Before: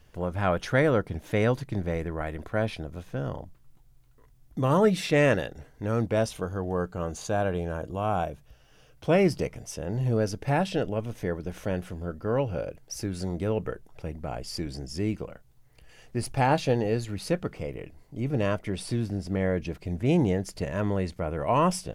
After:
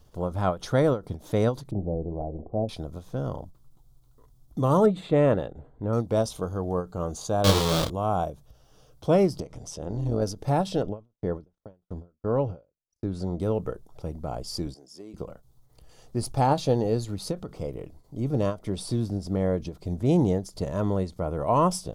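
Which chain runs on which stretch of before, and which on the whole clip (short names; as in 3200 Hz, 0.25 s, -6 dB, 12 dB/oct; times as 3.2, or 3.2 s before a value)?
1.71–2.69 elliptic low-pass 780 Hz, stop band 60 dB + notches 60/120/180/240/300/360/420/480/540 Hz
4.86–5.93 running mean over 8 samples + mismatched tape noise reduction decoder only
7.44–7.9 half-waves squared off + bell 3000 Hz +11 dB 1.8 oct + doubler 31 ms -2 dB
9.4–10.22 LPF 8400 Hz + upward compressor, threshold -31 dBFS + AM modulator 160 Hz, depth 50%
10.82–13.4 LPF 2400 Hz 6 dB/oct + gate -41 dBFS, range -46 dB
14.74–15.14 HPF 330 Hz + gate -35 dBFS, range -10 dB + compressor 8:1, threshold -40 dBFS
whole clip: band shelf 2100 Hz -11.5 dB 1.1 oct; ending taper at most 240 dB/s; gain +1.5 dB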